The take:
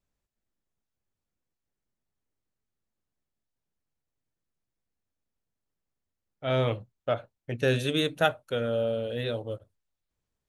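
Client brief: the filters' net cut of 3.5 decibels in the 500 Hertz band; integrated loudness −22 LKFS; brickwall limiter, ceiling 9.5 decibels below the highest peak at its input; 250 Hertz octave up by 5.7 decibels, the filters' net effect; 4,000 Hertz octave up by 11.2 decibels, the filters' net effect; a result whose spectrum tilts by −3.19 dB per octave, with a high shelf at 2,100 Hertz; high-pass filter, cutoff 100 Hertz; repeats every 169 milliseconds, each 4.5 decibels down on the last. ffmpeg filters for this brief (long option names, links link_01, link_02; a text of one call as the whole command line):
ffmpeg -i in.wav -af "highpass=100,equalizer=frequency=250:width_type=o:gain=9,equalizer=frequency=500:width_type=o:gain=-7,highshelf=frequency=2100:gain=5.5,equalizer=frequency=4000:width_type=o:gain=8.5,alimiter=limit=-16.5dB:level=0:latency=1,aecho=1:1:169|338|507|676|845|1014|1183|1352|1521:0.596|0.357|0.214|0.129|0.0772|0.0463|0.0278|0.0167|0.01,volume=6dB" out.wav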